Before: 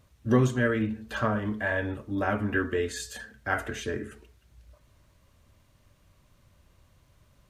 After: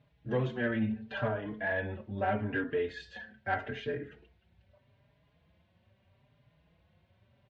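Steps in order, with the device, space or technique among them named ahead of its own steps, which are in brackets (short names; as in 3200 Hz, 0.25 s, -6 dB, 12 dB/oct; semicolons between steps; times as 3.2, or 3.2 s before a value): barber-pole flanger into a guitar amplifier (endless flanger 4.5 ms +0.78 Hz; soft clip -19.5 dBFS, distortion -22 dB; speaker cabinet 93–3500 Hz, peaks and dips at 160 Hz +4 dB, 310 Hz -5 dB, 730 Hz +4 dB, 1200 Hz -10 dB)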